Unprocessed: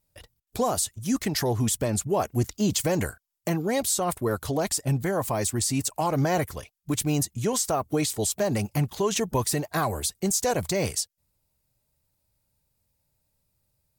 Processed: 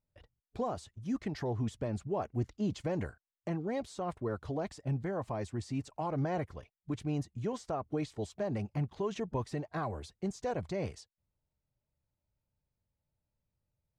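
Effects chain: tape spacing loss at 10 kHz 27 dB; gain -8 dB

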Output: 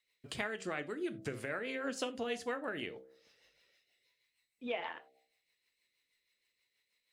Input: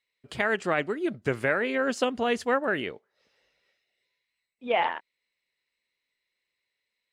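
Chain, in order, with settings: high shelf 3800 Hz +7.5 dB; de-hum 65.47 Hz, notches 12; compressor 3:1, threshold -38 dBFS, peak gain reduction 14 dB; rotary speaker horn 6.3 Hz; non-linear reverb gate 0.11 s falling, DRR 10 dB; gain +1 dB

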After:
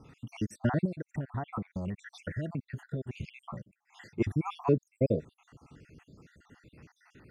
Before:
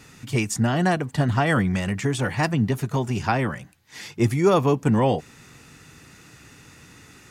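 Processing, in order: random spectral dropouts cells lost 66%; LPF 1100 Hz 6 dB/oct; 0.85–3.14 compressor 12:1, threshold -29 dBFS, peak gain reduction 13 dB; gain -2.5 dB

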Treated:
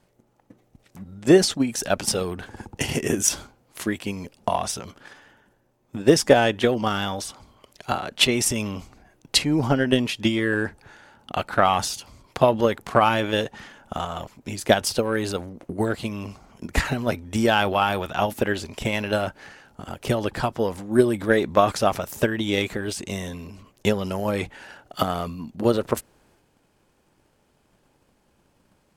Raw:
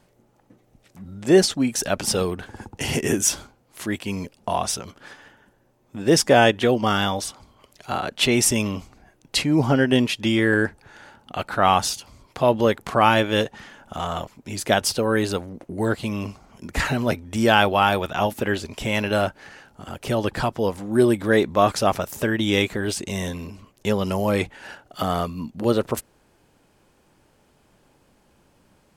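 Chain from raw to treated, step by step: transient shaper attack +10 dB, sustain +6 dB; gain -5.5 dB

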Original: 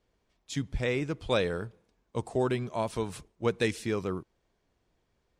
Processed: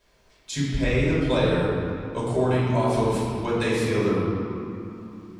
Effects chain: compressor, threshold -28 dBFS, peak gain reduction 6.5 dB; reverb RT60 2.4 s, pre-delay 3 ms, DRR -8 dB; mismatched tape noise reduction encoder only

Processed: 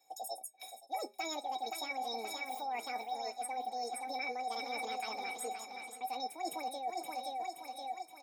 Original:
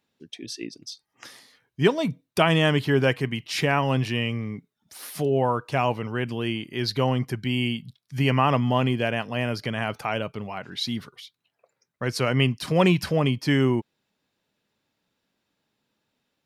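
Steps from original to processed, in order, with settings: feedback echo 1.046 s, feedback 45%, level -10.5 dB; dynamic EQ 220 Hz, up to +7 dB, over -36 dBFS, Q 1.3; resonator 380 Hz, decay 0.19 s, harmonics odd, mix 100%; de-hum 103.5 Hz, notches 8; on a send: swung echo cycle 1.151 s, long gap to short 3:1, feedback 30%, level -24 dB; on the sum: reverse; compressor 10:1, threshold -46 dBFS, peak gain reduction 24.5 dB; reverse; speed mistake 7.5 ips tape played at 15 ips; flange 0.46 Hz, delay 3.6 ms, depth 2.9 ms, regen -86%; three-band squash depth 40%; gain +15 dB

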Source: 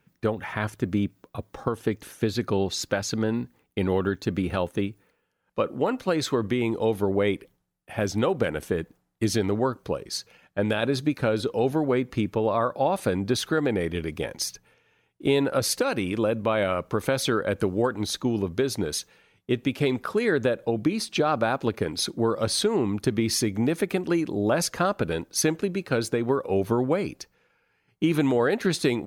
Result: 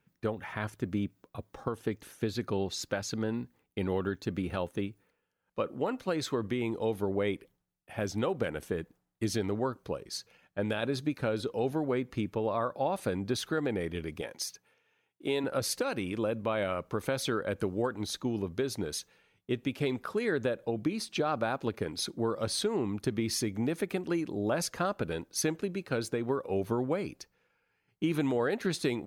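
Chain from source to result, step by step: 14.21–15.44 HPF 300 Hz 6 dB/oct; gain -7 dB

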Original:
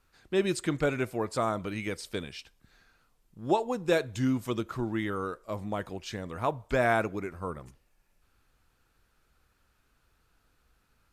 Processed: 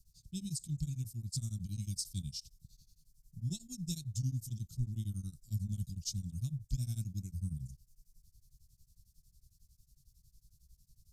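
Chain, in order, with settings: elliptic band-stop 150–5300 Hz, stop band 50 dB; vocal rider within 4 dB 0.5 s; beating tremolo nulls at 11 Hz; gain +6 dB

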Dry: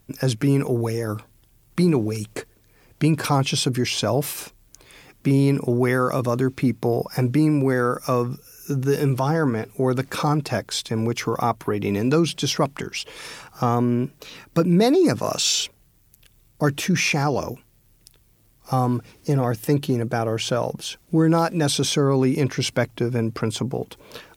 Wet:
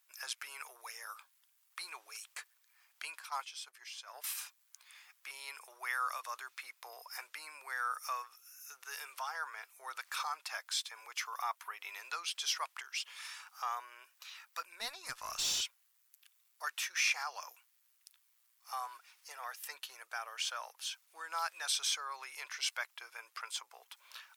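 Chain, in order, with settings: 3.19–4.24 gate -18 dBFS, range -13 dB; inverse Chebyshev high-pass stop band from 230 Hz, stop band 70 dB; 14.65–15.61 tube stage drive 20 dB, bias 0.35; gain -9 dB

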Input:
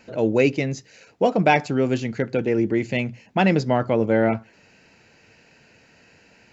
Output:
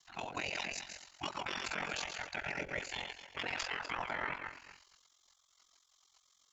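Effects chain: regenerating reverse delay 0.121 s, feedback 44%, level -7.5 dB; spectral gate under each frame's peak -20 dB weak; in parallel at -2 dB: vocal rider within 3 dB 0.5 s; on the sum: limiter -21.5 dBFS, peak gain reduction 11 dB; added harmonics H 4 -39 dB, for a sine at -21.5 dBFS; ring modulator 22 Hz; gain -3.5 dB

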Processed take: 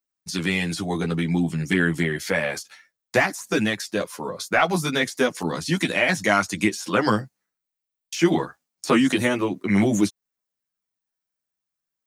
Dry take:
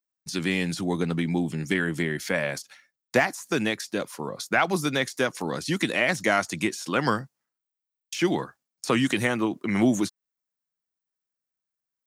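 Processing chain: chorus voices 2, 0.29 Hz, delay 11 ms, depth 1.4 ms; gain +6 dB

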